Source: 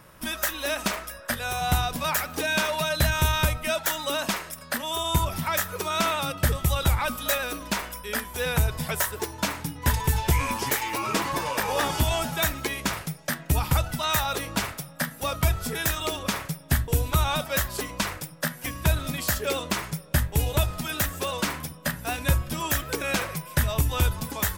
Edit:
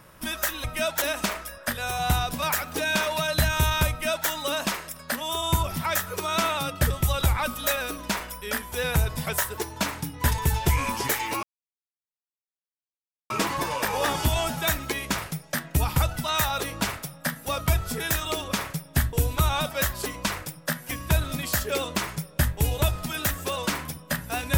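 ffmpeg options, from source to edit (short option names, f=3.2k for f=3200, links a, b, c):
-filter_complex "[0:a]asplit=4[a][b][c][d];[a]atrim=end=0.642[e];[b]atrim=start=3.518:end=3.902[f];[c]atrim=start=0.638:end=11.05,asetpts=PTS-STARTPTS,afade=t=out:st=10.408:d=0.004:c=hsin,apad=pad_dur=1.87[g];[d]atrim=start=11.05,asetpts=PTS-STARTPTS,afade=t=in:d=0.004:c=hsin[h];[e][f]acrossfade=d=0.004:c1=hsin:c2=hsin[i];[g][h]concat=n=2:v=0:a=1[j];[i][j]acrossfade=d=0.004:c1=hsin:c2=hsin"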